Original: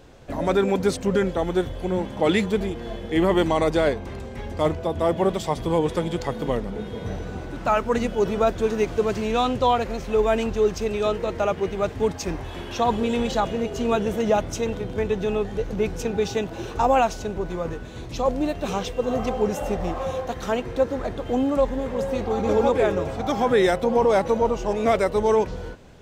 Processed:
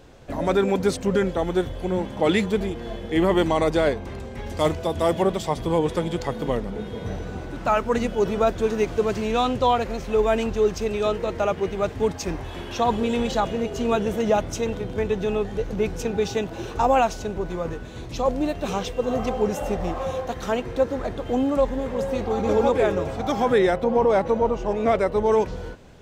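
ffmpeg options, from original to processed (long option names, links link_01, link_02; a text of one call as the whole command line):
ffmpeg -i in.wav -filter_complex "[0:a]asettb=1/sr,asplit=3[link_01][link_02][link_03];[link_01]atrim=end=4.464[link_04];[link_02]atrim=start=4.46:end=5.23,asetpts=PTS-STARTPTS,afade=type=in:duration=0.004:curve=qsin,afade=type=out:start_time=0.766:duration=0.004:curve=qsin,highshelf=frequency=2900:gain=9[link_05];[link_03]atrim=start=5.226[link_06];[link_04][link_05]acrossfade=duration=0.004:curve1=hsin:curve2=qsin[link_07];[link_07][link_06]acrossfade=duration=0.004:curve1=qsin:curve2=hsin,asettb=1/sr,asplit=3[link_08][link_09][link_10];[link_08]atrim=end=23.584[link_11];[link_09]atrim=start=23.58:end=25.32,asetpts=PTS-STARTPTS,afade=type=in:duration=0.004:curve=qsin,afade=type=out:start_time=1.736:duration=0.004:curve=qsin,highshelf=frequency=4000:gain=-10.5[link_12];[link_10]atrim=start=25.316[link_13];[link_11][link_12]acrossfade=duration=0.004:curve1=hsin:curve2=qsin[link_14];[link_14][link_13]acrossfade=duration=0.004:curve1=qsin:curve2=hsin" out.wav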